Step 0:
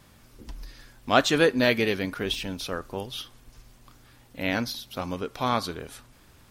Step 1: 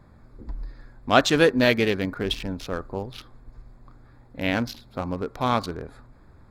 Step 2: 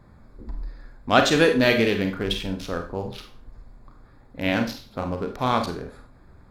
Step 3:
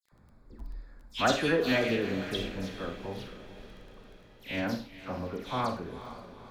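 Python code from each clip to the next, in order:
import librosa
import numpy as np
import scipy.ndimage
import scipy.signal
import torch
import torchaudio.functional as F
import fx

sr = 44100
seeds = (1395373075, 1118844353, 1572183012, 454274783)

y1 = fx.wiener(x, sr, points=15)
y1 = fx.low_shelf(y1, sr, hz=92.0, db=5.0)
y1 = y1 * librosa.db_to_amplitude(2.5)
y2 = fx.rev_schroeder(y1, sr, rt60_s=0.38, comb_ms=31, drr_db=5.0)
y3 = fx.dispersion(y2, sr, late='lows', ms=120.0, hz=2200.0)
y3 = fx.dmg_crackle(y3, sr, seeds[0], per_s=12.0, level_db=-39.0)
y3 = fx.echo_diffused(y3, sr, ms=472, feedback_pct=53, wet_db=-13)
y3 = y3 * librosa.db_to_amplitude(-8.5)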